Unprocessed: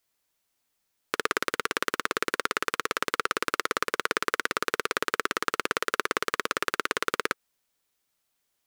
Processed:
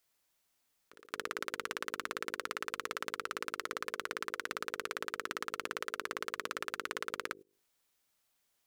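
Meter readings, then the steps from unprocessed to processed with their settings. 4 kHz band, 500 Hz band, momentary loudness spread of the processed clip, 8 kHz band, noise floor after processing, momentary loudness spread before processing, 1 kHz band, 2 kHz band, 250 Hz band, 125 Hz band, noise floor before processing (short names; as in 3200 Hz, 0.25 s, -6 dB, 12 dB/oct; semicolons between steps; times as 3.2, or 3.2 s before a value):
-10.5 dB, -11.0 dB, 0 LU, -10.5 dB, -78 dBFS, 1 LU, -10.5 dB, -10.5 dB, -12.0 dB, -11.0 dB, -78 dBFS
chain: notches 50/100/150/200/250/300/350/400/450/500 Hz; pre-echo 0.224 s -16.5 dB; level quantiser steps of 20 dB; gain +2 dB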